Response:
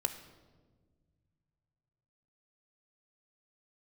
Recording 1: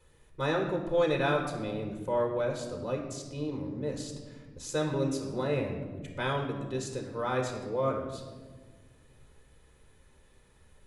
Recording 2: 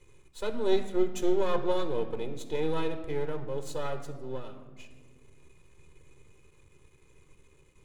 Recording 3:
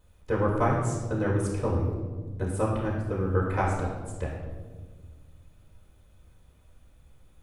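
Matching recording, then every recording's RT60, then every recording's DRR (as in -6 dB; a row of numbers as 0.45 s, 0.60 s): 2; 1.5 s, 1.5 s, 1.5 s; 1.0 dB, 6.5 dB, -6.5 dB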